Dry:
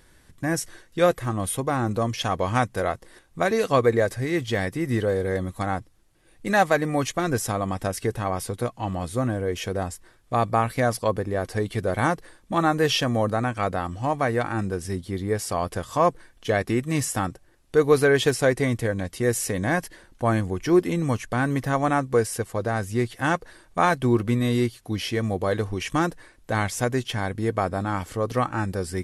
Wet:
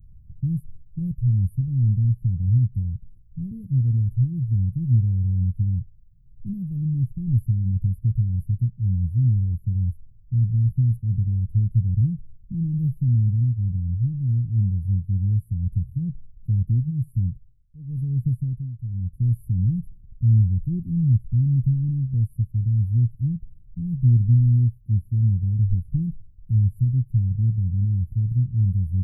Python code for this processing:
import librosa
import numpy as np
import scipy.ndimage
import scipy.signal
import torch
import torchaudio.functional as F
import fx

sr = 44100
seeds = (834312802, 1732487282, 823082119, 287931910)

y = fx.tremolo_shape(x, sr, shape='triangle', hz=1.0, depth_pct=90, at=(16.89, 19.37), fade=0.02)
y = scipy.signal.sosfilt(scipy.signal.cheby2(4, 80, [820.0, 6100.0], 'bandstop', fs=sr, output='sos'), y)
y = fx.bass_treble(y, sr, bass_db=12, treble_db=7)